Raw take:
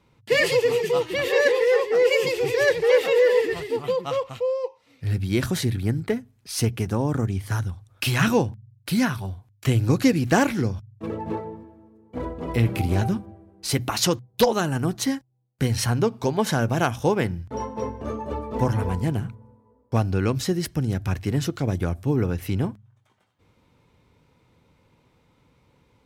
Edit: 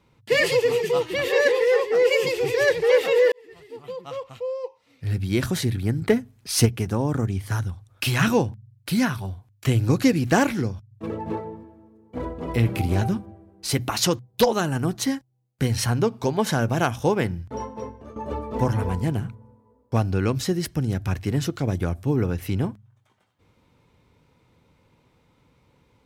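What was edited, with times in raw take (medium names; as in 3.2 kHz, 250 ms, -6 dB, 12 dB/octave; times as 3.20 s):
3.32–5.29 s: fade in
6.02–6.66 s: gain +5.5 dB
10.53–10.91 s: fade out, to -7.5 dB
17.45–18.16 s: fade out, to -15.5 dB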